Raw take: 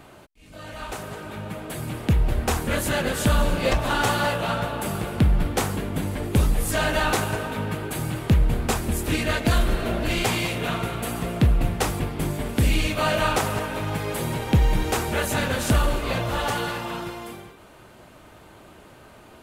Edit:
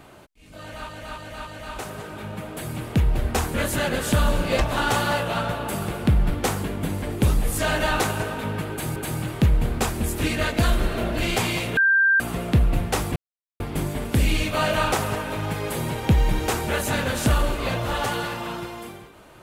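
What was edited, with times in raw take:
0.60–0.89 s: loop, 4 plays
7.84–8.09 s: loop, 2 plays
10.65–11.08 s: bleep 1.58 kHz -14.5 dBFS
12.04 s: insert silence 0.44 s

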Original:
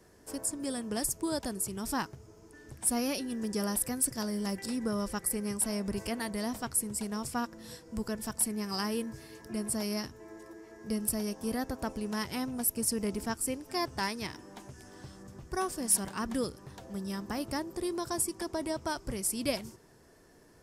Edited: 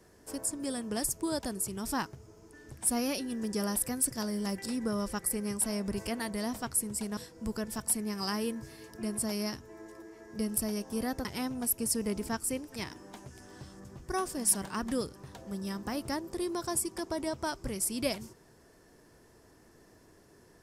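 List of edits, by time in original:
7.17–7.68 s: delete
11.76–12.22 s: delete
13.73–14.19 s: delete

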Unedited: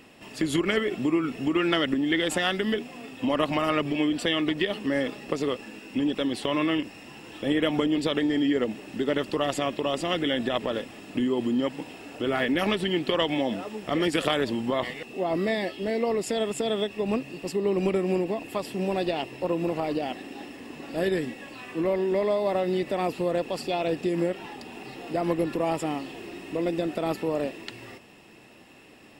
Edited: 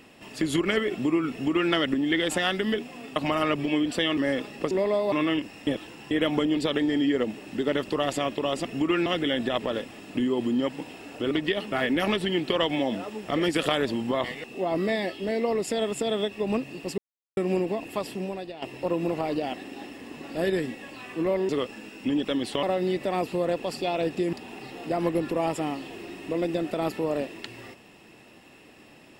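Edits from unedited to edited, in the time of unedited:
1.31–1.72 s: copy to 10.06 s
3.16–3.43 s: delete
4.44–4.85 s: move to 12.31 s
5.39–6.53 s: swap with 22.08–22.49 s
7.08–7.52 s: reverse
17.57–17.96 s: mute
18.69–19.21 s: fade out quadratic, to -13 dB
24.19–24.57 s: delete

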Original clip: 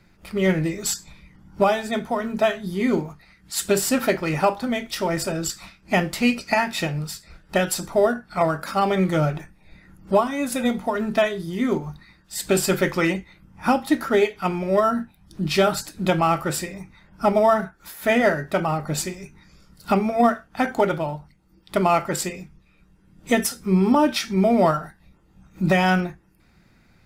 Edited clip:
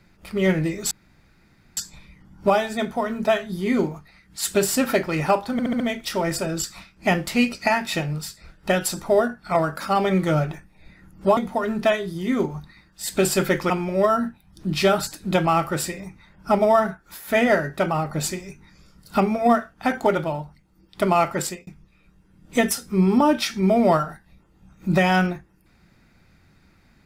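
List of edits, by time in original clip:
0.91 s: insert room tone 0.86 s
4.66 s: stutter 0.07 s, 5 plays
10.23–10.69 s: delete
13.02–14.44 s: delete
22.16–22.41 s: fade out

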